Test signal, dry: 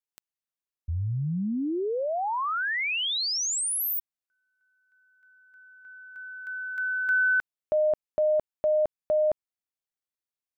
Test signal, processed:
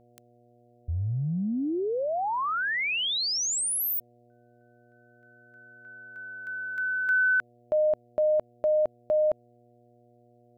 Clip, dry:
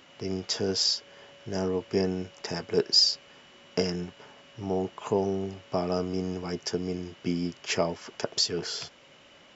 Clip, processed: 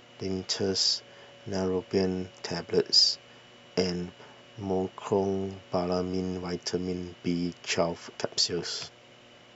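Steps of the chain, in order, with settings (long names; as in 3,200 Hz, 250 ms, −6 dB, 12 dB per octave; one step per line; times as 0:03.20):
hum with harmonics 120 Hz, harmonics 6, −60 dBFS −1 dB per octave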